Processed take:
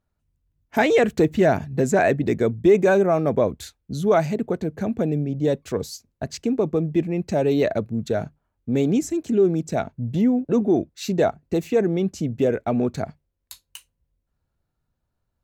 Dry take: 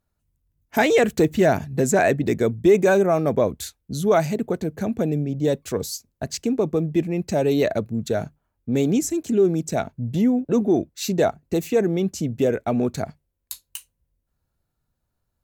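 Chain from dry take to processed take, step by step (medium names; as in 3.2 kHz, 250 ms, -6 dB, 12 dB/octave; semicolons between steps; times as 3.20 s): treble shelf 6.2 kHz -11 dB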